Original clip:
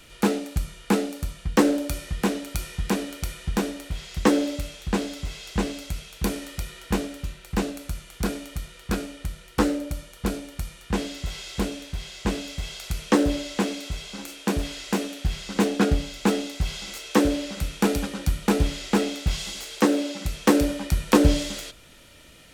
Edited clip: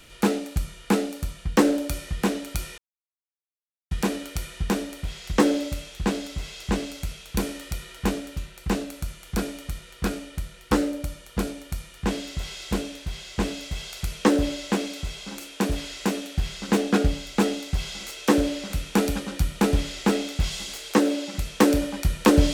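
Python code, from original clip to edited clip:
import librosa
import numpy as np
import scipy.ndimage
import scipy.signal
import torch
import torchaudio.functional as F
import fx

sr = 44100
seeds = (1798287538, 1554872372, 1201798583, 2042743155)

y = fx.edit(x, sr, fx.insert_silence(at_s=2.78, length_s=1.13), tone=tone)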